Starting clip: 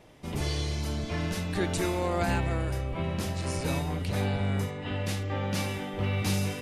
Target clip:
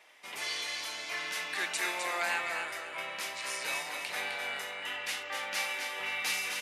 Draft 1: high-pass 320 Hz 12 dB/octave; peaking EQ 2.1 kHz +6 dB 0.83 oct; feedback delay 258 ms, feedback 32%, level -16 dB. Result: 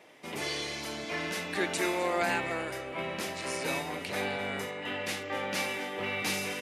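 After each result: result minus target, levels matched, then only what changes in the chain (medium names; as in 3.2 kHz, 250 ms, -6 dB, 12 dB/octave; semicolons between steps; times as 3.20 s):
250 Hz band +15.0 dB; echo-to-direct -10 dB
change: high-pass 1 kHz 12 dB/octave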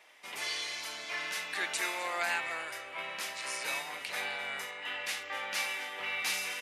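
echo-to-direct -10 dB
change: feedback delay 258 ms, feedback 32%, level -6 dB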